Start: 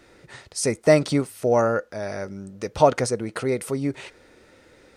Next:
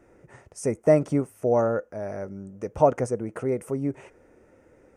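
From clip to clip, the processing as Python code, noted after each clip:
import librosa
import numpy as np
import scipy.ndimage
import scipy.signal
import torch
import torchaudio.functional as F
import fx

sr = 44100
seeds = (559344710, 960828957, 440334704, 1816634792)

y = fx.curve_eq(x, sr, hz=(670.0, 2700.0, 4100.0, 6000.0), db=(0, -11, -27, -9))
y = F.gain(torch.from_numpy(y), -2.0).numpy()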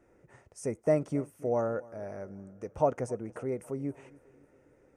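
y = fx.echo_feedback(x, sr, ms=273, feedback_pct=52, wet_db=-22)
y = F.gain(torch.from_numpy(y), -7.5).numpy()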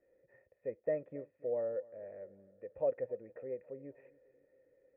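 y = fx.formant_cascade(x, sr, vowel='e')
y = F.gain(torch.from_numpy(y), 1.0).numpy()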